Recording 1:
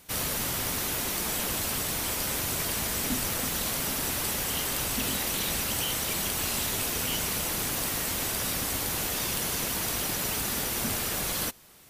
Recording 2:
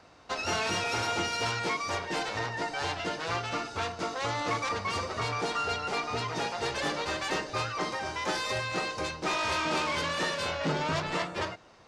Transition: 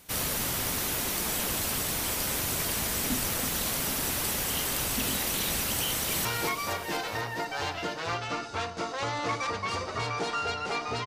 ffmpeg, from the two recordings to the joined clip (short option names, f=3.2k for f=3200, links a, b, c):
-filter_complex "[0:a]apad=whole_dur=11.06,atrim=end=11.06,atrim=end=6.252[a];[1:a]atrim=start=1.468:end=6.28[b];[a][b]acrossfade=d=0.004:c1=hsin:c2=hsin,asplit=2[c][d];[d]afade=t=in:st=5.88:d=0.01,afade=t=out:st=6.25:d=0.01,aecho=0:1:240|480|720|960|1200|1440|1680|1920:0.473151|0.283891|0.170334|0.102201|0.0613204|0.0367922|0.0220753|0.0132452[e];[c][e]amix=inputs=2:normalize=0"